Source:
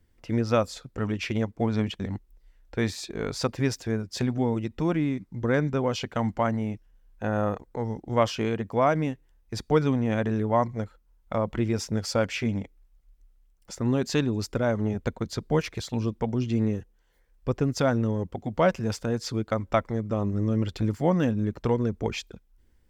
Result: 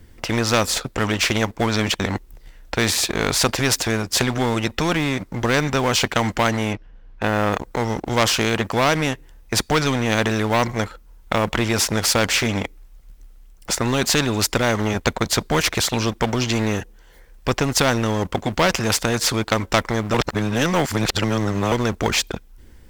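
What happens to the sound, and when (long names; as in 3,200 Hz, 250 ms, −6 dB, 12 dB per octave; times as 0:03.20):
0:06.73–0:07.53: high-frequency loss of the air 220 metres
0:20.14–0:21.72: reverse
whole clip: leveller curve on the samples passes 1; every bin compressed towards the loudest bin 2 to 1; level +6.5 dB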